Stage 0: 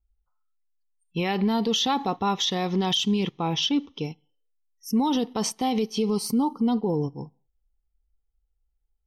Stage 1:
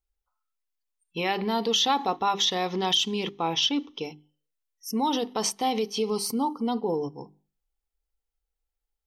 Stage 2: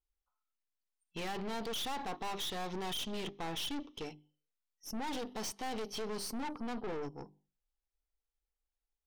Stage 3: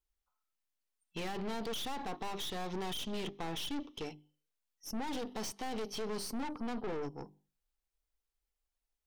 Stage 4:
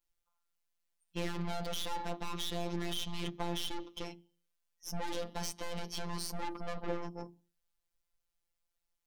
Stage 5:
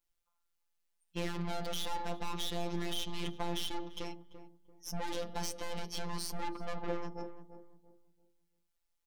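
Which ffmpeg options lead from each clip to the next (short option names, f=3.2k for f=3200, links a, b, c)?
-af "bass=f=250:g=-12,treble=f=4k:g=0,bandreject=f=50:t=h:w=6,bandreject=f=100:t=h:w=6,bandreject=f=150:t=h:w=6,bandreject=f=200:t=h:w=6,bandreject=f=250:t=h:w=6,bandreject=f=300:t=h:w=6,bandreject=f=350:t=h:w=6,bandreject=f=400:t=h:w=6,volume=1.5dB"
-af "highshelf=f=11k:g=-10.5,aeval=exprs='(tanh(50.1*val(0)+0.65)-tanh(0.65))/50.1':c=same,volume=-3dB"
-filter_complex "[0:a]acrossover=split=490[a][b];[b]acompressor=threshold=-43dB:ratio=2[c];[a][c]amix=inputs=2:normalize=0,volume=1.5dB"
-af "flanger=delay=2.2:depth=2:regen=-88:speed=0.3:shape=triangular,afftfilt=real='hypot(re,im)*cos(PI*b)':imag='0':win_size=1024:overlap=0.75,bandreject=f=50:t=h:w=6,bandreject=f=100:t=h:w=6,bandreject=f=150:t=h:w=6,bandreject=f=200:t=h:w=6,bandreject=f=250:t=h:w=6,bandreject=f=300:t=h:w=6,bandreject=f=350:t=h:w=6,volume=9.5dB"
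-filter_complex "[0:a]asplit=2[a][b];[b]adelay=340,lowpass=f=850:p=1,volume=-10dB,asplit=2[c][d];[d]adelay=340,lowpass=f=850:p=1,volume=0.34,asplit=2[e][f];[f]adelay=340,lowpass=f=850:p=1,volume=0.34,asplit=2[g][h];[h]adelay=340,lowpass=f=850:p=1,volume=0.34[i];[a][c][e][g][i]amix=inputs=5:normalize=0"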